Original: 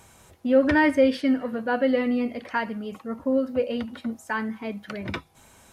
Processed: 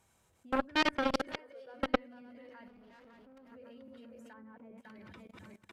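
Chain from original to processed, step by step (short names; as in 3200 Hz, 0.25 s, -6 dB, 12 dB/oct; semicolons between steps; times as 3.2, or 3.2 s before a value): regenerating reverse delay 0.277 s, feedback 58%, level -4 dB; level quantiser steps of 19 dB; 1.27–1.74 resonant low shelf 320 Hz -10.5 dB, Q 3; 2.68–3.52 tube stage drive 40 dB, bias 0.75; 4.33–4.78 LPF 1300 Hz 12 dB/oct; added harmonics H 3 -8 dB, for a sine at -10 dBFS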